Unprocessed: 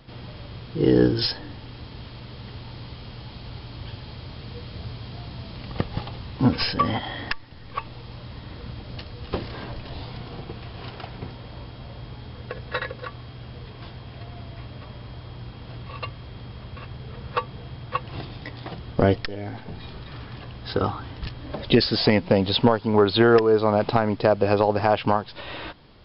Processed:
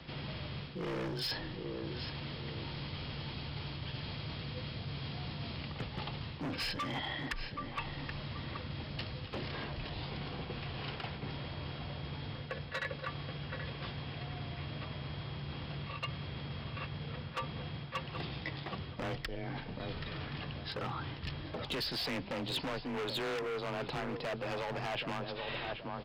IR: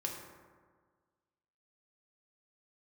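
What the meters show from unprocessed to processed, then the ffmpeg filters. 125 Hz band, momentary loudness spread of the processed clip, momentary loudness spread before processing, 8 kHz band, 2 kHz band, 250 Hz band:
−10.5 dB, 6 LU, 20 LU, can't be measured, −8.0 dB, −16.0 dB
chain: -filter_complex "[0:a]afreqshift=23,aresample=16000,asoftclip=type=tanh:threshold=-13.5dB,aresample=44100,asplit=2[link_01][link_02];[link_02]adelay=778,lowpass=frequency=2100:poles=1,volume=-12.5dB,asplit=2[link_03][link_04];[link_04]adelay=778,lowpass=frequency=2100:poles=1,volume=0.25,asplit=2[link_05][link_06];[link_06]adelay=778,lowpass=frequency=2100:poles=1,volume=0.25[link_07];[link_01][link_03][link_05][link_07]amix=inputs=4:normalize=0,asoftclip=type=hard:threshold=-23dB,areverse,acompressor=threshold=-37dB:ratio=6,areverse,equalizer=frequency=2500:width_type=o:width=1.4:gain=6,volume=-1dB"

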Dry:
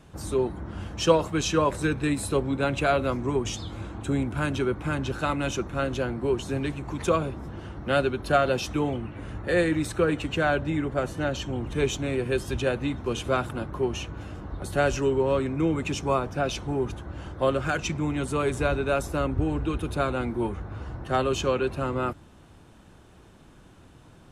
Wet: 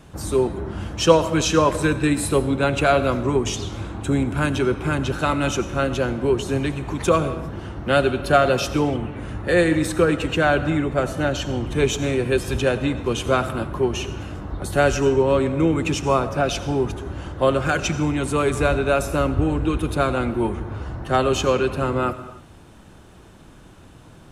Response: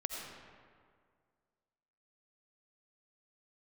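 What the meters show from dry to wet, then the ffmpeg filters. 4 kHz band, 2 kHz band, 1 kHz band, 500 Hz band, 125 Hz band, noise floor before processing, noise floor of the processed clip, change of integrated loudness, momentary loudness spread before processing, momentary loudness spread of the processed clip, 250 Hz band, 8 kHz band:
+6.0 dB, +6.0 dB, +6.0 dB, +6.0 dB, +5.5 dB, −52 dBFS, −46 dBFS, +6.0 dB, 10 LU, 10 LU, +6.0 dB, +6.5 dB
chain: -filter_complex "[0:a]asplit=2[link_01][link_02];[1:a]atrim=start_sample=2205,afade=type=out:start_time=0.36:duration=0.01,atrim=end_sample=16317,highshelf=frequency=7300:gain=8.5[link_03];[link_02][link_03]afir=irnorm=-1:irlink=0,volume=-8dB[link_04];[link_01][link_04]amix=inputs=2:normalize=0,volume=3dB"

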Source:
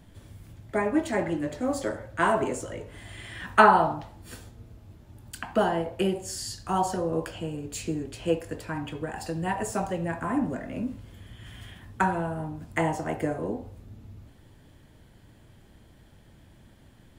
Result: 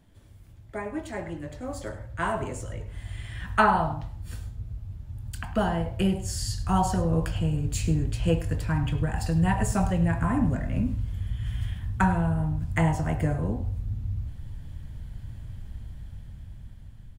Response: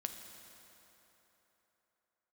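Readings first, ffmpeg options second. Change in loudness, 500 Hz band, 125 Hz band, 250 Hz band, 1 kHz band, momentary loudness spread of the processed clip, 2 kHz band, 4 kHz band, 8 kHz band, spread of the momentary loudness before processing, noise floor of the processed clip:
0.0 dB, −4.0 dB, +10.5 dB, +2.5 dB, −2.5 dB, 17 LU, −2.5 dB, 0.0 dB, +0.5 dB, 20 LU, −47 dBFS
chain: -filter_complex "[0:a]asubboost=boost=10:cutoff=110,dynaudnorm=framelen=570:gausssize=7:maxgain=10dB,asplit=2[link_01][link_02];[link_02]aecho=0:1:103:0.15[link_03];[link_01][link_03]amix=inputs=2:normalize=0,volume=-7dB"

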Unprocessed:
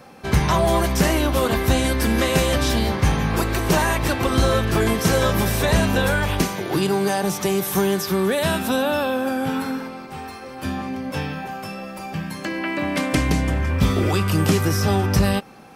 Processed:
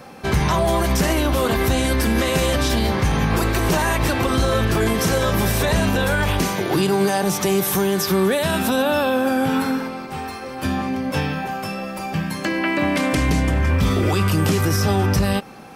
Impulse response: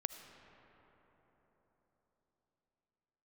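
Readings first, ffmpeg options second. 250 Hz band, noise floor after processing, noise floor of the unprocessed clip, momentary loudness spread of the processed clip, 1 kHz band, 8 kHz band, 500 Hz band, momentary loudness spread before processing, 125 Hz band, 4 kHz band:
+1.5 dB, −32 dBFS, −37 dBFS, 7 LU, +1.5 dB, +1.0 dB, +1.0 dB, 11 LU, +1.0 dB, +1.0 dB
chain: -af "alimiter=limit=-15dB:level=0:latency=1:release=48,volume=4.5dB"

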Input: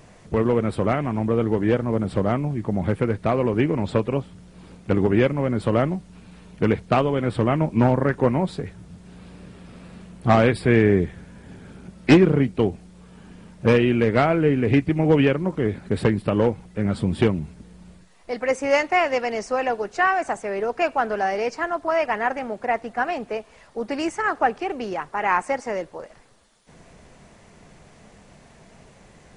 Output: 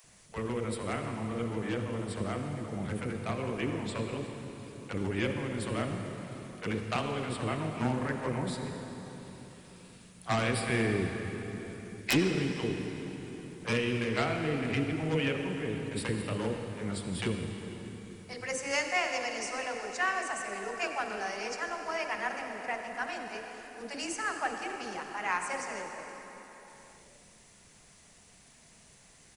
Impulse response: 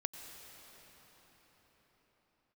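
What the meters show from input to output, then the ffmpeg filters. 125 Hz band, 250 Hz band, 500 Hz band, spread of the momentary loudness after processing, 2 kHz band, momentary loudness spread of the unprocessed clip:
−11.5 dB, −12.5 dB, −13.5 dB, 14 LU, −6.5 dB, 10 LU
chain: -filter_complex "[0:a]acrossover=split=560[link_01][link_02];[link_01]adelay=40[link_03];[link_03][link_02]amix=inputs=2:normalize=0,crystalizer=i=5.5:c=0,aeval=exprs='1.12*(cos(1*acos(clip(val(0)/1.12,-1,1)))-cos(1*PI/2))+0.02*(cos(7*acos(clip(val(0)/1.12,-1,1)))-cos(7*PI/2))':channel_layout=same[link_04];[1:a]atrim=start_sample=2205,asetrate=66150,aresample=44100[link_05];[link_04][link_05]afir=irnorm=-1:irlink=0,aeval=exprs='(mod(2.11*val(0)+1,2)-1)/2.11':channel_layout=same,volume=-7.5dB"

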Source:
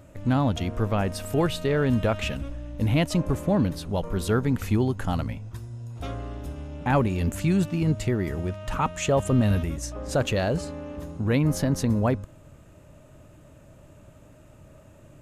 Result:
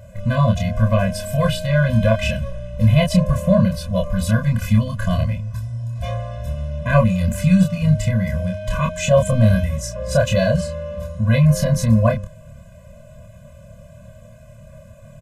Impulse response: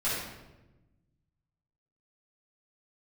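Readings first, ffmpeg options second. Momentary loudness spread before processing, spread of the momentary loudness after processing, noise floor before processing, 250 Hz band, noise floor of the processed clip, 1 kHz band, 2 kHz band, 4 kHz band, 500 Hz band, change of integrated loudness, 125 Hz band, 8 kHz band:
12 LU, 11 LU, −51 dBFS, +5.5 dB, −43 dBFS, +3.0 dB, +7.0 dB, +5.5 dB, +6.5 dB, +7.0 dB, +9.0 dB, +5.5 dB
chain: -filter_complex "[0:a]asplit=2[link_01][link_02];[link_02]adelay=27,volume=-3dB[link_03];[link_01][link_03]amix=inputs=2:normalize=0,afftfilt=real='re*eq(mod(floor(b*sr/1024/240),2),0)':imag='im*eq(mod(floor(b*sr/1024/240),2),0)':win_size=1024:overlap=0.75,volume=7.5dB"

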